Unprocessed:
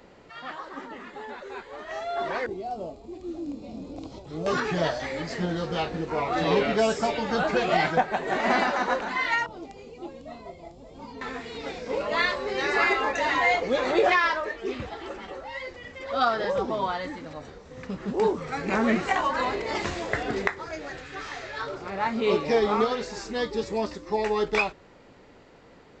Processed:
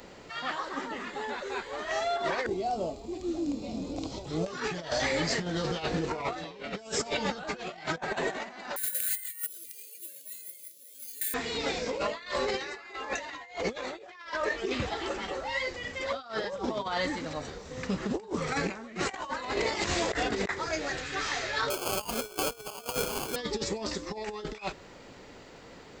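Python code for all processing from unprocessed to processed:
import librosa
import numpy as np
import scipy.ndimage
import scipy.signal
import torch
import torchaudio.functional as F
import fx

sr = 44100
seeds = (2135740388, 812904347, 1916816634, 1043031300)

y = fx.chain(x, sr, fx.resample_bad(factor=4, down='filtered', up='hold'),
    fx.brickwall_bandstop(low_hz=630.0, high_hz=1400.0),
    fx.differentiator(), at=(8.76, 11.34))
y = fx.chain(y, sr, fx.highpass(hz=320.0, slope=24),
    fx.sample_hold(seeds[0], rate_hz=1900.0, jitter_pct=0), at=(21.7, 23.36))
y = fx.high_shelf(y, sr, hz=3800.0, db=10.5)
y = fx.over_compress(y, sr, threshold_db=-30.0, ratio=-0.5)
y = F.gain(torch.from_numpy(y), -2.0).numpy()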